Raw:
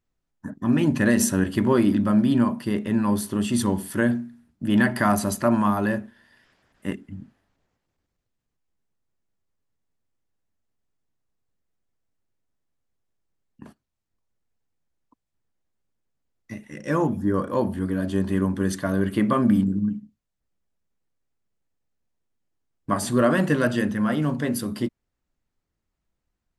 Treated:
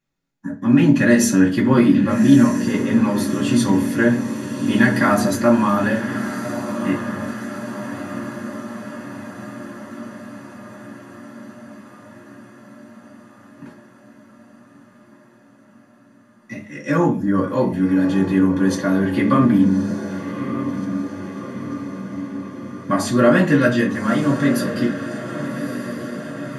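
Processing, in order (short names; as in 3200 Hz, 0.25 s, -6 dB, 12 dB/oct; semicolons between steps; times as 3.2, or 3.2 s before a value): diffused feedback echo 1.208 s, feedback 65%, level -10 dB; reverb RT60 0.35 s, pre-delay 3 ms, DRR -4.5 dB; gain -3 dB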